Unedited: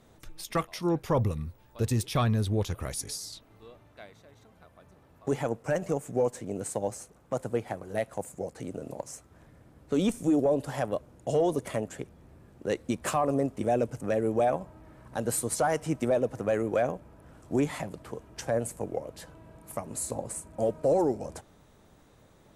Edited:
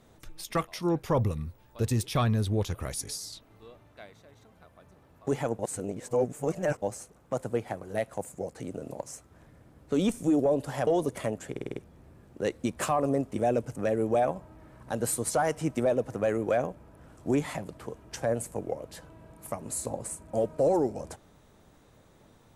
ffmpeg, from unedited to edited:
-filter_complex "[0:a]asplit=9[a][b][c][d][e][f][g][h][i];[a]atrim=end=5.592[j];[b]atrim=start=5.588:end=6.822,asetpts=PTS-STARTPTS,areverse[k];[c]atrim=start=6.818:end=10.872[l];[d]atrim=start=11.368:end=12.062[m];[e]atrim=start=12.008:end=12.062[n];[f]atrim=start=12.008:end=12.062[o];[g]atrim=start=12.008:end=12.062[p];[h]atrim=start=12.008:end=12.062[q];[i]atrim=start=12.008[r];[j][k]acrossfade=d=0.004:c1=hsin:c2=hsin[s];[s][l]acrossfade=d=0.004:c1=hsin:c2=hsin[t];[t][m]acrossfade=d=0.004:c1=hsin:c2=hsin[u];[u][n]acrossfade=d=0.004:c1=hsin:c2=hsin[v];[v][o]acrossfade=d=0.004:c1=hsin:c2=hsin[w];[w][p]acrossfade=d=0.004:c1=hsin:c2=hsin[x];[x][q]acrossfade=d=0.004:c1=hsin:c2=hsin[y];[y][r]acrossfade=d=0.004:c1=hsin:c2=hsin"

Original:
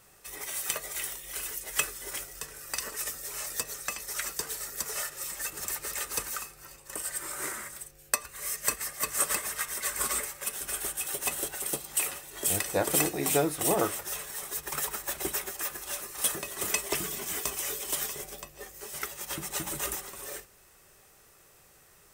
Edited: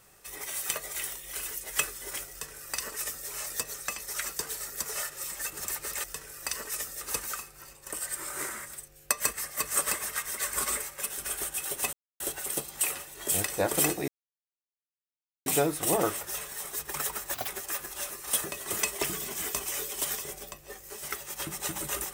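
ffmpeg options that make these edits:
-filter_complex "[0:a]asplit=8[a][b][c][d][e][f][g][h];[a]atrim=end=6.042[i];[b]atrim=start=2.308:end=3.282[j];[c]atrim=start=6.038:end=8.232[k];[d]atrim=start=8.628:end=11.36,asetpts=PTS-STARTPTS,afade=t=out:st=2.728:d=0.004:c=hsin,apad=pad_dur=0.27[l];[e]atrim=start=11.36:end=13.24,asetpts=PTS-STARTPTS,afade=t=in:d=0.004:c=hsin,afade=t=out:st=1.876:d=0.004:c=hsin,apad=pad_dur=1.38[m];[f]atrim=start=13.24:end=15.124,asetpts=PTS-STARTPTS,afade=t=in:d=0.004:c=hsin[n];[g]atrim=start=15.12:end=15.39,asetpts=PTS-STARTPTS,asetrate=83790,aresample=44100[o];[h]atrim=start=15.386[p];[i][j]acrossfade=d=0.004:c1=hsin:c2=hsin[q];[q][k]acrossfade=d=0.004:c1=hsin:c2=hsin[r];[l][m][n]concat=n=3:v=0:a=1[s];[r][s]acrossfade=d=0.004:c1=hsin:c2=hsin[t];[t][o]acrossfade=d=0.004:c1=hsin:c2=hsin[u];[u][p]acrossfade=d=0.004:c1=hsin:c2=hsin"

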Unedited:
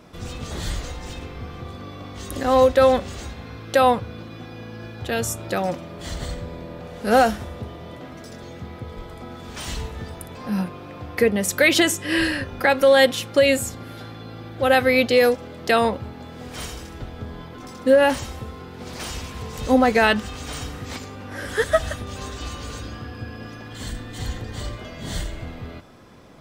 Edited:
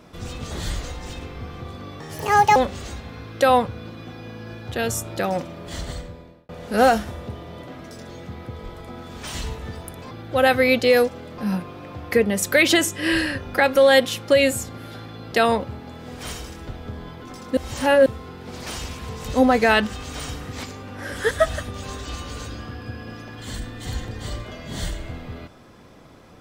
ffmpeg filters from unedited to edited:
-filter_complex "[0:a]asplit=9[a][b][c][d][e][f][g][h][i];[a]atrim=end=2.004[j];[b]atrim=start=2:end=2.89,asetpts=PTS-STARTPTS,asetrate=70119,aresample=44100[k];[c]atrim=start=2.886:end=6.82,asetpts=PTS-STARTPTS,afade=t=out:st=3.224:d=0.71[l];[d]atrim=start=6.82:end=10.442,asetpts=PTS-STARTPTS,afade=t=in:d=0.004:c=hsin[m];[e]atrim=start=14.378:end=15.652[n];[f]atrim=start=10.438:end=14.382[o];[g]atrim=start=15.648:end=17.902[p];[h]atrim=start=17.898:end=18.392,asetpts=PTS-STARTPTS,areverse[q];[i]atrim=start=18.388[r];[j][k]acrossfade=d=0.004:c1=hsin:c2=hsin[s];[l][m]concat=n=2:v=0:a=1[t];[s][t]acrossfade=d=0.004:c1=hsin:c2=hsin[u];[u][n]acrossfade=d=0.004:c1=hsin:c2=hsin[v];[v][o]acrossfade=d=0.004:c1=hsin:c2=hsin[w];[w][p]acrossfade=d=0.004:c1=hsin:c2=hsin[x];[x][q]acrossfade=d=0.004:c1=hsin:c2=hsin[y];[y][r]acrossfade=d=0.004:c1=hsin:c2=hsin"

